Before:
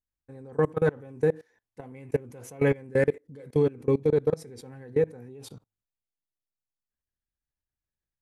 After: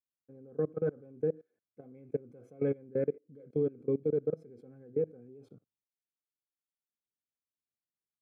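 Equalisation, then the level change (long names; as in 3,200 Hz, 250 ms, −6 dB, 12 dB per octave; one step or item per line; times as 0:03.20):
moving average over 47 samples
high-pass filter 130 Hz
low-shelf EQ 190 Hz −9 dB
−2.0 dB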